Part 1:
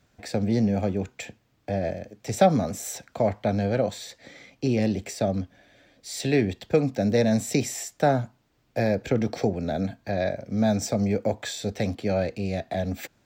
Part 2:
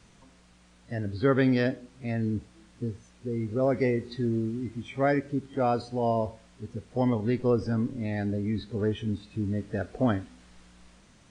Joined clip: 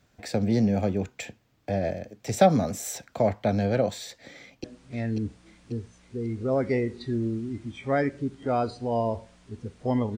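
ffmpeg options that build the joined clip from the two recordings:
ffmpeg -i cue0.wav -i cue1.wav -filter_complex "[0:a]apad=whole_dur=10.17,atrim=end=10.17,atrim=end=4.642[link_01];[1:a]atrim=start=1.748:end=7.28[link_02];[link_01][link_02]acrossfade=duration=0.004:curve1=hsin:curve2=hsin,asplit=2[link_03][link_04];[link_04]afade=type=in:start_time=4.38:duration=0.01,afade=type=out:start_time=4.64:duration=0.01,aecho=0:1:540|1080|1620|2160|2700|3240:0.595662|0.268048|0.120622|0.0542797|0.0244259|0.0109916[link_05];[link_03][link_05]amix=inputs=2:normalize=0" out.wav

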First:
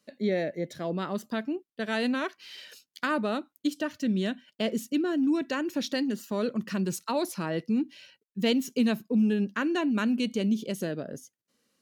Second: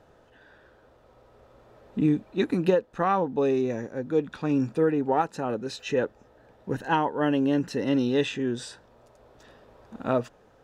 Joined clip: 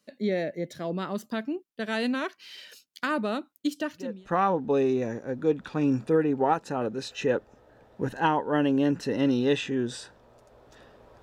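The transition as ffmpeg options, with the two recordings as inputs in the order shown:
ffmpeg -i cue0.wav -i cue1.wav -filter_complex "[0:a]apad=whole_dur=11.22,atrim=end=11.22,atrim=end=4.34,asetpts=PTS-STARTPTS[link_01];[1:a]atrim=start=2.56:end=9.9,asetpts=PTS-STARTPTS[link_02];[link_01][link_02]acrossfade=duration=0.46:curve1=qua:curve2=qua" out.wav

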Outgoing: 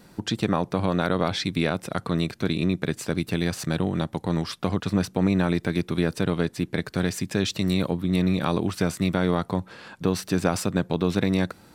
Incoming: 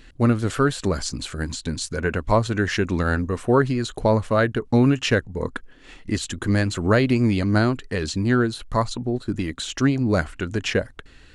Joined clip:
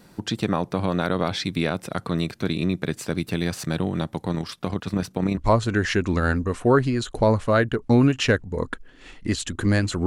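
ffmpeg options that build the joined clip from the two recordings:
ffmpeg -i cue0.wav -i cue1.wav -filter_complex "[0:a]asettb=1/sr,asplit=3[link_01][link_02][link_03];[link_01]atrim=end=4.324[link_04];[link_02]atrim=start=4.32:end=5.37,asetpts=PTS-STARTPTS,afade=type=in:duration=0.004:curve=qsin,afade=type=out:start_time=1.046:duration=0.004:curve=qsin,tremolo=f=34:d=0.462[link_05];[link_03]atrim=start=5.366[link_06];[link_04][link_05]acrossfade=duration=0.004:curve1=hsin:curve2=qsin[link_07];[link_07][link_06]acrossfade=duration=0.004:curve1=qsin:curve2=hsin,apad=whole_dur=10.06,atrim=end=10.06,atrim=end=5.372[link_08];[1:a]atrim=start=2.198:end=6.89[link_09];[link_08][link_09]acrossfade=duration=0.004:curve1=hsin:curve2=hsin" out.wav

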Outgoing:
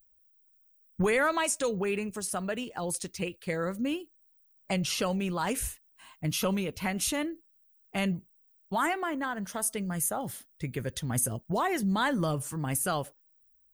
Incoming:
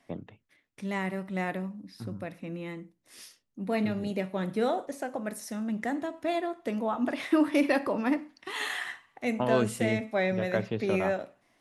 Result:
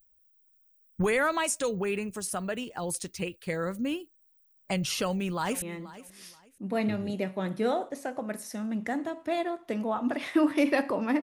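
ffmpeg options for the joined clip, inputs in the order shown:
ffmpeg -i cue0.wav -i cue1.wav -filter_complex "[0:a]apad=whole_dur=11.22,atrim=end=11.22,atrim=end=5.622[link_01];[1:a]atrim=start=2.588:end=8.19[link_02];[link_01][link_02]acrossfade=duration=0.004:curve1=hsin:curve2=hsin,asplit=2[link_03][link_04];[link_04]afade=type=in:start_time=4.97:duration=0.01,afade=type=out:start_time=5.62:duration=0.01,aecho=0:1:480|960:0.141254|0.0353134[link_05];[link_03][link_05]amix=inputs=2:normalize=0" out.wav

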